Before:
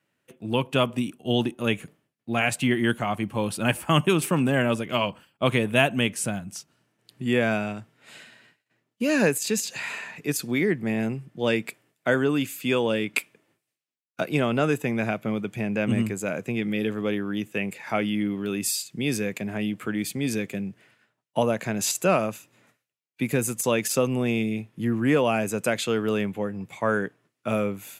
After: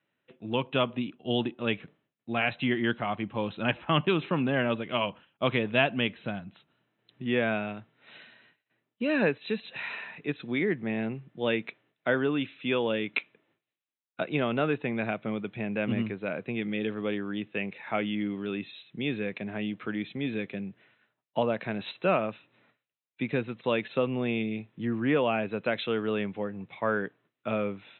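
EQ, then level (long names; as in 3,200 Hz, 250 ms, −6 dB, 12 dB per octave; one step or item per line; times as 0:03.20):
linear-phase brick-wall low-pass 4,100 Hz
parametric band 82 Hz −4 dB 2.4 octaves
−3.5 dB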